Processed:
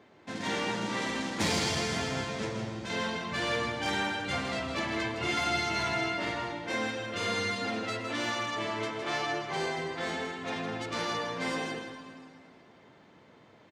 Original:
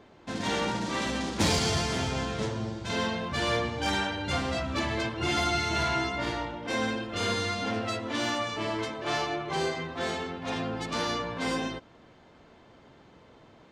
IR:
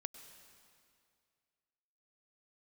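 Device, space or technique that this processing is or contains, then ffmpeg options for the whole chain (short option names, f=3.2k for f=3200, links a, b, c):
PA in a hall: -filter_complex "[0:a]highpass=110,equalizer=f=2k:t=o:w=0.54:g=4.5,aecho=1:1:161:0.422[a];[1:a]atrim=start_sample=2205[b];[a][b]afir=irnorm=-1:irlink=0"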